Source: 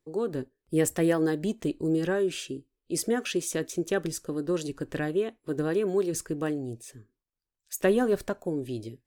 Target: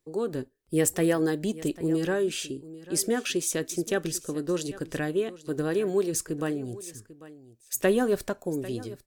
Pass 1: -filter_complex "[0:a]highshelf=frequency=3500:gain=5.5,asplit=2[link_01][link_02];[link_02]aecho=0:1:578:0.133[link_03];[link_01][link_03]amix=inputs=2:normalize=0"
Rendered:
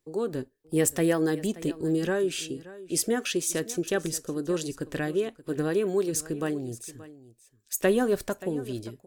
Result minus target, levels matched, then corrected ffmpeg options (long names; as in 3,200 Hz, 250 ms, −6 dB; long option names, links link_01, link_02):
echo 217 ms early
-filter_complex "[0:a]highshelf=frequency=3500:gain=5.5,asplit=2[link_01][link_02];[link_02]aecho=0:1:795:0.133[link_03];[link_01][link_03]amix=inputs=2:normalize=0"